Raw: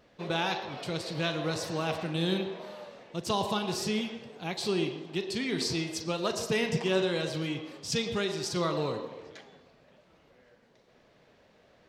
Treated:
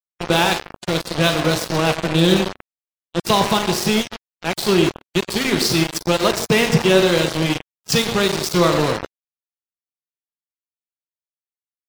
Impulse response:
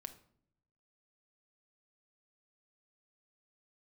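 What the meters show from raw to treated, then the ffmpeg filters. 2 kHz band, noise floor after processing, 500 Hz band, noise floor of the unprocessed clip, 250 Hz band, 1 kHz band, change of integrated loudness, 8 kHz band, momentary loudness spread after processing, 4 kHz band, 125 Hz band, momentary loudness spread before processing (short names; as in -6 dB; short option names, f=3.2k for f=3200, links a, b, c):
+13.5 dB, under -85 dBFS, +12.5 dB, -63 dBFS, +13.0 dB, +13.5 dB, +13.0 dB, +13.5 dB, 9 LU, +13.0 dB, +13.5 dB, 10 LU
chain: -filter_complex "[0:a]asplit=2[a][b];[1:a]atrim=start_sample=2205,asetrate=41454,aresample=44100[c];[b][c]afir=irnorm=-1:irlink=0,volume=8dB[d];[a][d]amix=inputs=2:normalize=0,aeval=exprs='val(0)*gte(abs(val(0)),0.0708)':c=same,afftdn=nr=29:nf=-43,volume=5.5dB"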